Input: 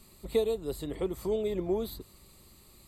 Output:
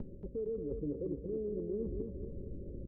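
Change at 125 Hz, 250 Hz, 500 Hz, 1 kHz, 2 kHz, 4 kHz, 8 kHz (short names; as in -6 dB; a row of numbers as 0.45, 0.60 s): 0.0 dB, -3.5 dB, -7.0 dB, under -25 dB, under -30 dB, under -40 dB, under -30 dB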